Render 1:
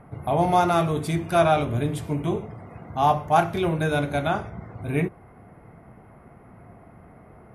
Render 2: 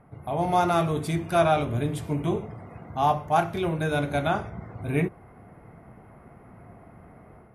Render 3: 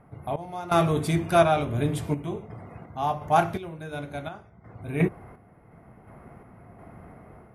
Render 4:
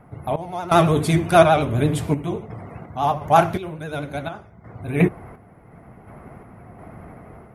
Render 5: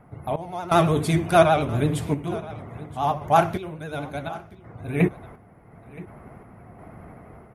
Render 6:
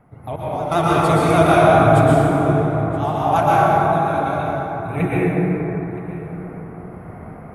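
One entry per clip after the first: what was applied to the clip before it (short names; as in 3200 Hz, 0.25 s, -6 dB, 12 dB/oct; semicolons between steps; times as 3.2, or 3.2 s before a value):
AGC gain up to 6.5 dB; gain -7 dB
random-step tremolo 2.8 Hz, depth 90%; gain +4 dB
vibrato 12 Hz 69 cents; gain +6 dB
echo 0.973 s -19.5 dB; gain -3 dB
plate-style reverb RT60 4.4 s, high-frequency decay 0.3×, pre-delay 0.105 s, DRR -8.5 dB; gain -2 dB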